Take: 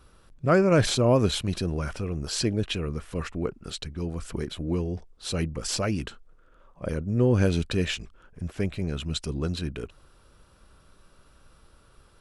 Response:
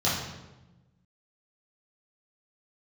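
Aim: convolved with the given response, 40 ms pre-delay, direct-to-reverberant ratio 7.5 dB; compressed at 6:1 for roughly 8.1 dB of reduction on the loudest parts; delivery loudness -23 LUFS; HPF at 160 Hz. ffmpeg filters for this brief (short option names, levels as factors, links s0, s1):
-filter_complex "[0:a]highpass=160,acompressor=threshold=0.0562:ratio=6,asplit=2[s0][s1];[1:a]atrim=start_sample=2205,adelay=40[s2];[s1][s2]afir=irnorm=-1:irlink=0,volume=0.0944[s3];[s0][s3]amix=inputs=2:normalize=0,volume=2.66"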